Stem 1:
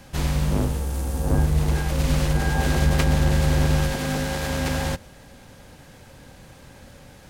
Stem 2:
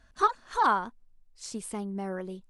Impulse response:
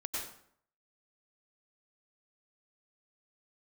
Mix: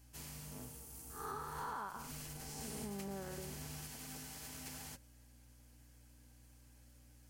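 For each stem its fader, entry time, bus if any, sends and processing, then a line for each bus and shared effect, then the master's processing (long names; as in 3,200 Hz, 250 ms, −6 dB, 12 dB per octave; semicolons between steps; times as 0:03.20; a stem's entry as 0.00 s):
−11.5 dB, 0.00 s, no send, high-pass filter 110 Hz 12 dB per octave; first-order pre-emphasis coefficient 0.8; mains hum 60 Hz, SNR 13 dB
−2.0 dB, 1.10 s, no send, spectrum smeared in time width 236 ms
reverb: not used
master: parametric band 3,700 Hz −7.5 dB 0.21 octaves; notch comb filter 180 Hz; downward compressor 10 to 1, threshold −40 dBFS, peak gain reduction 11 dB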